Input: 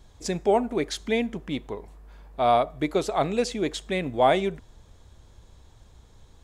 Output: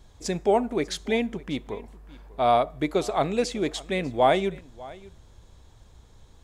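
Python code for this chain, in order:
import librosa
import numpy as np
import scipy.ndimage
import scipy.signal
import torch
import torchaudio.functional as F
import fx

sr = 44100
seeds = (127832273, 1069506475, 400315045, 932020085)

y = x + 10.0 ** (-21.0 / 20.0) * np.pad(x, (int(596 * sr / 1000.0), 0))[:len(x)]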